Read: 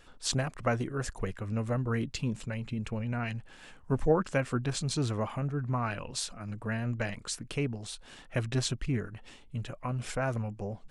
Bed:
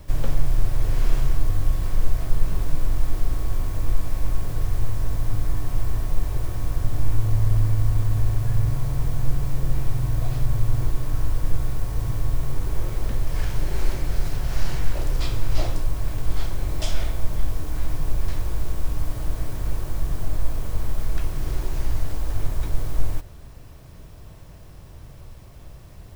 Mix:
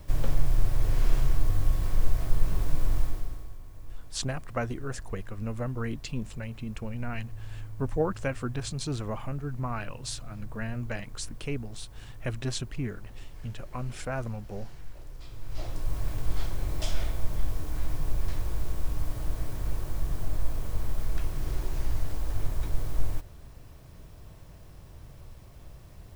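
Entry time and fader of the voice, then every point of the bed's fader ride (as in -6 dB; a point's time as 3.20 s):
3.90 s, -2.0 dB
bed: 2.99 s -3.5 dB
3.58 s -20.5 dB
15.24 s -20.5 dB
15.94 s -5 dB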